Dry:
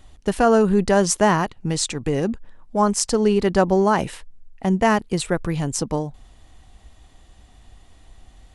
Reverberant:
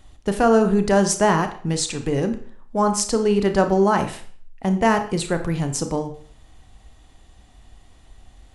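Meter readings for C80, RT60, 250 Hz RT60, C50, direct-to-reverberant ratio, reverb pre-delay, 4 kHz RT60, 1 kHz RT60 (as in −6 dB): 14.5 dB, 0.50 s, 0.50 s, 11.0 dB, 7.5 dB, 29 ms, 0.45 s, 0.50 s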